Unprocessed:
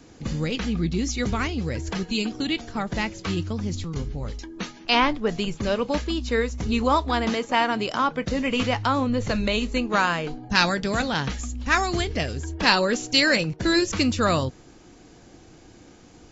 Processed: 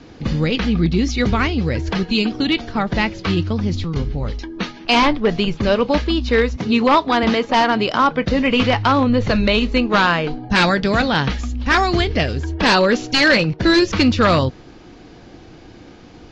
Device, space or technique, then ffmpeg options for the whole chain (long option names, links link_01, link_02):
synthesiser wavefolder: -filter_complex "[0:a]asettb=1/sr,asplit=3[link_01][link_02][link_03];[link_01]atrim=end=6.564[link_04];[link_02]atrim=start=6.56:end=7.23,asetpts=PTS-STARTPTS,afade=type=in:duration=0.004:curve=qsin,afade=type=out:start_time=0.666:duration=0.004:curve=qsin,highpass=frequency=130:width=0.5412,highpass=frequency=130:width=1.3066[link_05];[link_03]atrim=start=7.226[link_06];[link_04][link_05]acrossfade=duration=0.004:curve1=hsin:curve2=qsin[link_07];[link_07][link_06]acrossfade=duration=0.004:curve1=qsin:curve2=hsin,aeval=exprs='0.188*(abs(mod(val(0)/0.188+3,4)-2)-1)':channel_layout=same,lowpass=frequency=4900:width=0.5412,lowpass=frequency=4900:width=1.3066,volume=8dB"